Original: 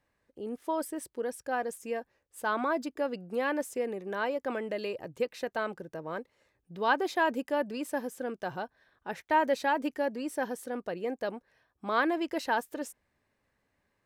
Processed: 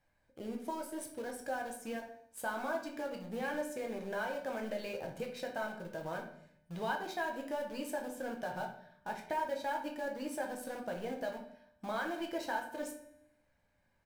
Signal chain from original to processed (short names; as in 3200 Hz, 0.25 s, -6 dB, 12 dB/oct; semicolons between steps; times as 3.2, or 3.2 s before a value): comb 1.3 ms, depth 46%; compressor 3:1, threshold -39 dBFS, peak gain reduction 15 dB; in parallel at -9.5 dB: bit-crush 7-bit; on the sum: resonator 300 Hz, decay 0.93 s, mix 60%; shoebox room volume 93 m³, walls mixed, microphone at 0.68 m; gain +4 dB